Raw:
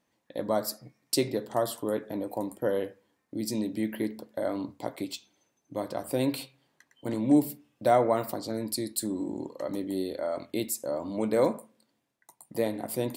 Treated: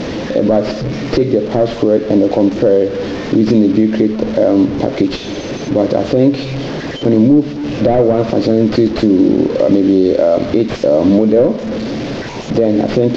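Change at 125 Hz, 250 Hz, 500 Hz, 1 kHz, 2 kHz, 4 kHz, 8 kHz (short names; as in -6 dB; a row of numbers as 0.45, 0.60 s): +20.5 dB, +19.5 dB, +17.5 dB, +9.5 dB, +15.0 dB, +12.5 dB, n/a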